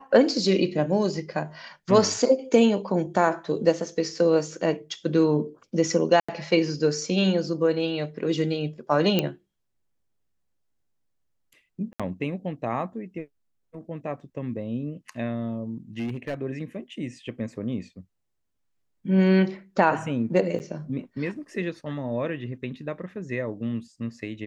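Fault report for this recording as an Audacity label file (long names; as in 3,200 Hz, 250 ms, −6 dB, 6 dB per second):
6.200000	6.290000	drop-out 85 ms
9.190000	9.190000	click −9 dBFS
11.930000	12.000000	drop-out 66 ms
15.980000	16.340000	clipping −25 dBFS
20.590000	20.600000	drop-out 9.1 ms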